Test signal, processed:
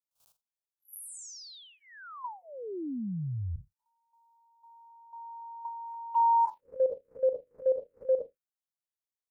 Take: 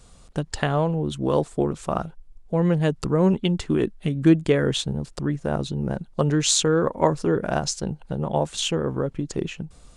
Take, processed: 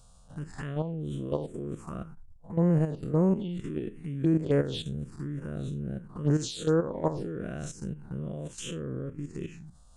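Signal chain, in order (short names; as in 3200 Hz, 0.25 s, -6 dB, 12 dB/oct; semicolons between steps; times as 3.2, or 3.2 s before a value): time blur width 0.12 s; dynamic EQ 1900 Hz, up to -3 dB, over -43 dBFS, Q 0.89; level quantiser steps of 11 dB; envelope phaser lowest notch 330 Hz, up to 3600 Hz, full sweep at -21 dBFS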